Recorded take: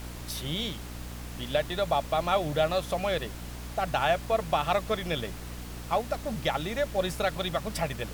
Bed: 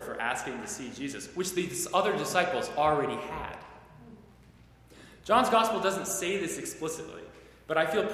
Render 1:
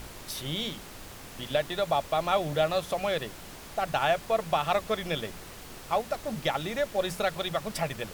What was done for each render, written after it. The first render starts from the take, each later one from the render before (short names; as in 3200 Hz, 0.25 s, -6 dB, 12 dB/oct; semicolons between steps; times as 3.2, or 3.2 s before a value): notches 60/120/180/240/300 Hz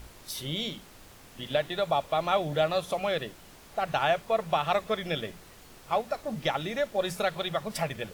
noise print and reduce 7 dB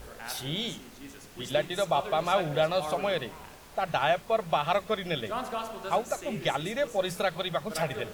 add bed -10.5 dB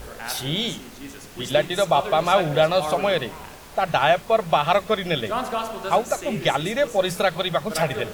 gain +7.5 dB